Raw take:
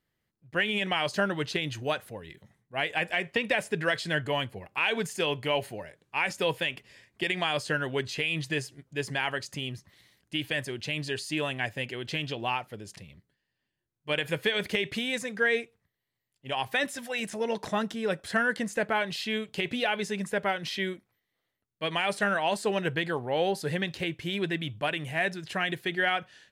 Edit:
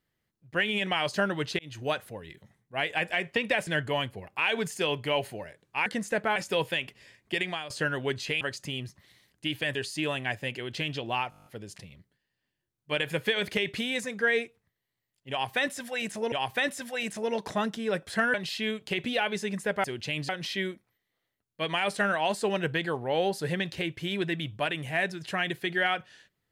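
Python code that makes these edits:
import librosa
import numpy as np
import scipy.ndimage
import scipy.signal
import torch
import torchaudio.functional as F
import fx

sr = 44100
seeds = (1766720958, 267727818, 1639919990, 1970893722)

y = fx.edit(x, sr, fx.fade_in_span(start_s=1.59, length_s=0.27),
    fx.cut(start_s=3.67, length_s=0.39),
    fx.fade_out_to(start_s=7.28, length_s=0.31, floor_db=-17.0),
    fx.cut(start_s=8.3, length_s=1.0),
    fx.move(start_s=10.64, length_s=0.45, to_s=20.51),
    fx.stutter(start_s=12.64, slice_s=0.02, count=9),
    fx.repeat(start_s=16.49, length_s=1.01, count=2),
    fx.move(start_s=18.51, length_s=0.5, to_s=6.25), tone=tone)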